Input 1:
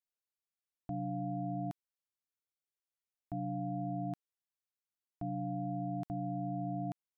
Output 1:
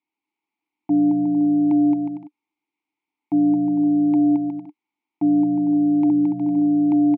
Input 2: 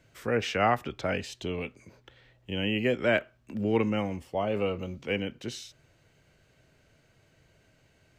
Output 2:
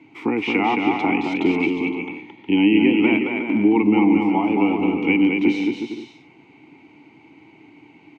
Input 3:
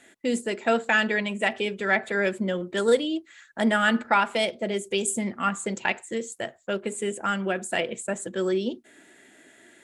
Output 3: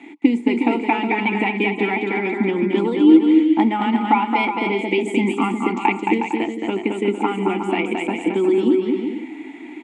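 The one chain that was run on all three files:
high-pass 100 Hz; tone controls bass -2 dB, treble -6 dB; compression 6:1, threshold -31 dBFS; vowel filter u; bouncing-ball echo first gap 220 ms, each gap 0.65×, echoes 5; normalise loudness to -19 LUFS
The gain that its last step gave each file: +28.0 dB, +28.5 dB, +28.5 dB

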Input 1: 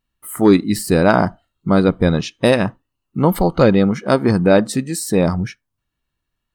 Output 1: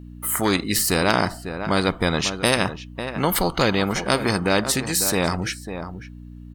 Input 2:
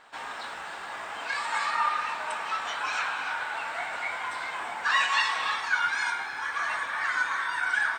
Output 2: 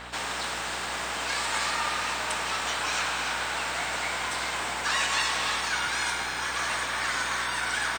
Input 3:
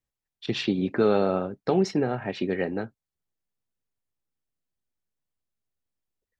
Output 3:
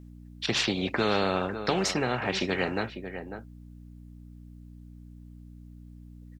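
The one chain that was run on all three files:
hum 60 Hz, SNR 29 dB; echo from a far wall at 94 m, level -18 dB; spectrum-flattening compressor 2:1; trim -1 dB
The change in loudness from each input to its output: -5.5 LU, +1.0 LU, -2.0 LU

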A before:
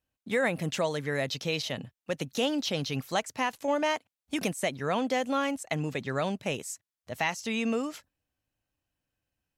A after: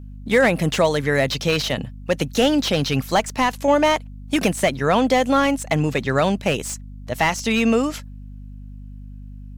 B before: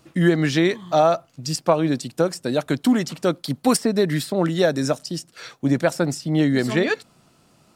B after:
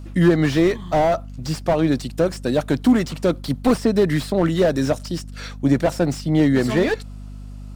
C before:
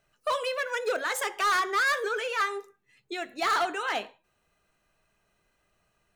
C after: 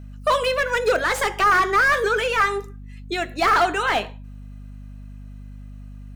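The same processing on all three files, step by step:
hum 50 Hz, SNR 16 dB; slew-rate limiter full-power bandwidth 97 Hz; normalise loudness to -20 LUFS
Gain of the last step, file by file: +11.5 dB, +2.5 dB, +9.0 dB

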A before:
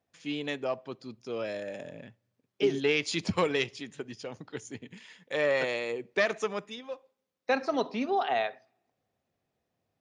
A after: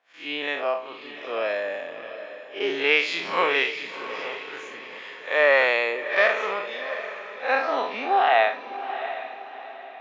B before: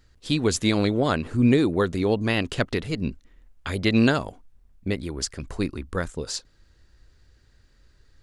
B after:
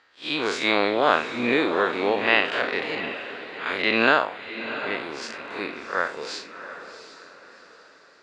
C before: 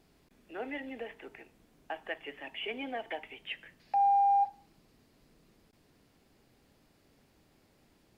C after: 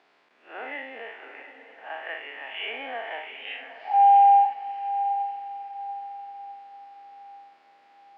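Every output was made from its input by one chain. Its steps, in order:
spectral blur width 117 ms; band-pass 800–2600 Hz; echo that smears into a reverb 718 ms, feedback 40%, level -11 dB; normalise loudness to -24 LUFS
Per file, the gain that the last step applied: +16.0 dB, +13.5 dB, +13.0 dB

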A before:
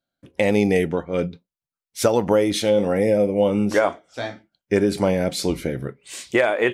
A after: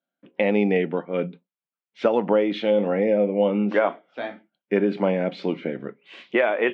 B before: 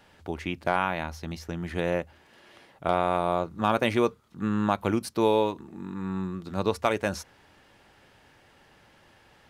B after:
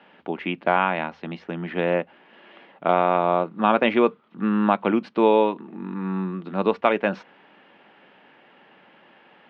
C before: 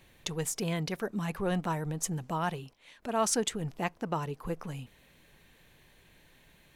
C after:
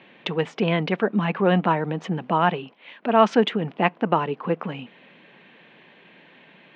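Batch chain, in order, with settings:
elliptic band-pass 190–3000 Hz, stop band 60 dB; normalise loudness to -23 LUFS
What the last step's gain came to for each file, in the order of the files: -1.5 dB, +6.0 dB, +12.5 dB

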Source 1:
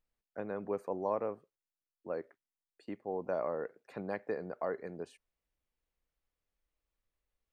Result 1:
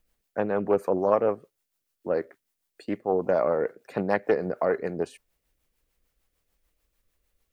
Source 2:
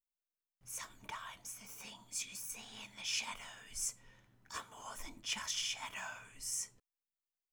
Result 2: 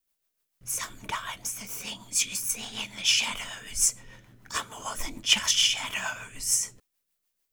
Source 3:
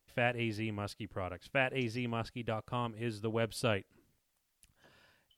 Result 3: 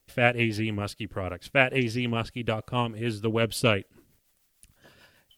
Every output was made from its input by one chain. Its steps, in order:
dynamic bell 3 kHz, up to +6 dB, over -56 dBFS, Q 5; rotary cabinet horn 6.7 Hz; treble shelf 11 kHz +8.5 dB; loudspeaker Doppler distortion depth 0.12 ms; normalise loudness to -27 LUFS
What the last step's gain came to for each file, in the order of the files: +14.5 dB, +15.5 dB, +10.5 dB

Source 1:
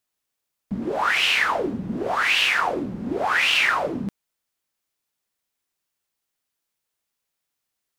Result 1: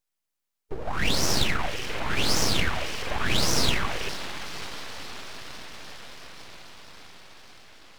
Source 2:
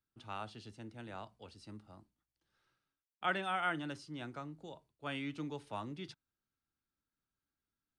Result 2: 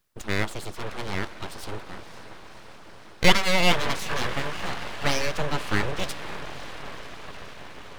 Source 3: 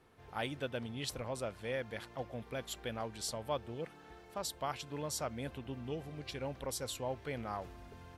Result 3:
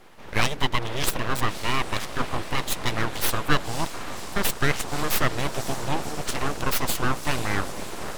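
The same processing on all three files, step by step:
echo that smears into a reverb 546 ms, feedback 74%, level -12 dB; harmonic-percussive split percussive +5 dB; full-wave rectifier; normalise loudness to -27 LUFS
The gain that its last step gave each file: -4.0 dB, +16.0 dB, +14.0 dB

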